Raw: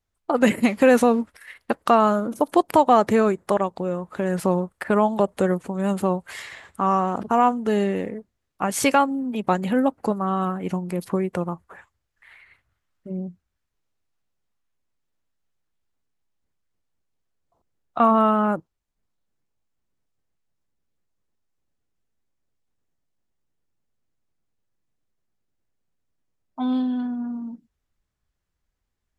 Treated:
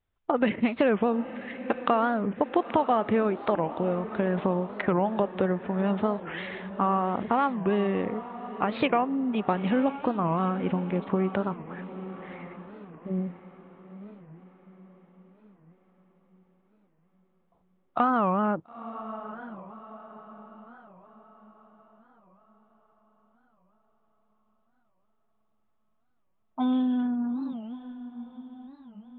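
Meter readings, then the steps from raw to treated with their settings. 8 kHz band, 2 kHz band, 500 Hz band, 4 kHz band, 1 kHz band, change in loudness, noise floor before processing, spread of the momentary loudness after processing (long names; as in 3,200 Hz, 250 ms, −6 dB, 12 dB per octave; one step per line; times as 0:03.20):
below −40 dB, −4.5 dB, −5.5 dB, −5.5 dB, −5.5 dB, −5.5 dB, −79 dBFS, 19 LU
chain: downward compressor 3 to 1, threshold −22 dBFS, peak gain reduction 9 dB
feedback delay with all-pass diffusion 925 ms, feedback 46%, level −13 dB
downsampling to 8,000 Hz
wow of a warped record 45 rpm, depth 250 cents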